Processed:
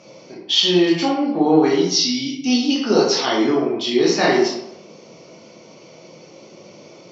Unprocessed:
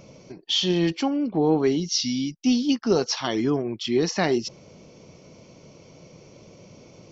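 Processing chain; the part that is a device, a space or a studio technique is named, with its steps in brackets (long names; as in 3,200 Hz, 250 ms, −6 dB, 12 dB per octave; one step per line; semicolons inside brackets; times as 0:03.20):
supermarket ceiling speaker (band-pass filter 240–6,200 Hz; convolution reverb RT60 0.80 s, pre-delay 14 ms, DRR −5 dB)
high-shelf EQ 5,100 Hz +5.5 dB
level +1.5 dB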